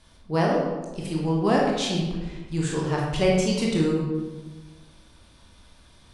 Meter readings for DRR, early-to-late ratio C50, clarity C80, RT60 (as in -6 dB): -3.0 dB, 1.0 dB, 3.5 dB, 1.3 s